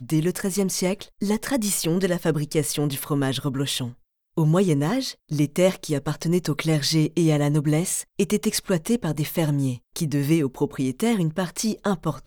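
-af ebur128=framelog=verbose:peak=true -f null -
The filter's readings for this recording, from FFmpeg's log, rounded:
Integrated loudness:
  I:         -23.6 LUFS
  Threshold: -33.7 LUFS
Loudness range:
  LRA:         1.9 LU
  Threshold: -43.6 LUFS
  LRA low:   -24.4 LUFS
  LRA high:  -22.5 LUFS
True peak:
  Peak:       -5.9 dBFS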